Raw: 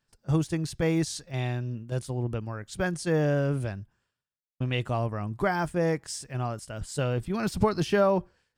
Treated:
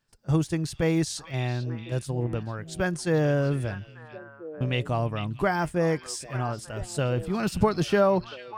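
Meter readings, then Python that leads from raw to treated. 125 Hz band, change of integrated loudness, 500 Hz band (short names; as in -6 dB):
+1.5 dB, +1.5 dB, +1.5 dB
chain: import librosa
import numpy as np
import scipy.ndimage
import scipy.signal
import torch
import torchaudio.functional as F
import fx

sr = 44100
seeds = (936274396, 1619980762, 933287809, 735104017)

y = fx.echo_stepped(x, sr, ms=445, hz=3100.0, octaves=-1.4, feedback_pct=70, wet_db=-7)
y = F.gain(torch.from_numpy(y), 1.5).numpy()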